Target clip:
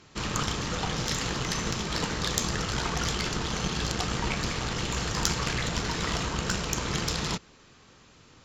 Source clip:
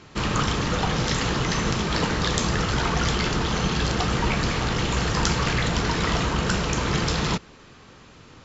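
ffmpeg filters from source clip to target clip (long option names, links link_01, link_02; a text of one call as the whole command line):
ffmpeg -i in.wav -af "aeval=exprs='0.708*(cos(1*acos(clip(val(0)/0.708,-1,1)))-cos(1*PI/2))+0.0631*(cos(4*acos(clip(val(0)/0.708,-1,1)))-cos(4*PI/2))+0.0316*(cos(5*acos(clip(val(0)/0.708,-1,1)))-cos(5*PI/2))+0.0501*(cos(7*acos(clip(val(0)/0.708,-1,1)))-cos(7*PI/2))':channel_layout=same,aemphasis=mode=production:type=cd,volume=-5dB" out.wav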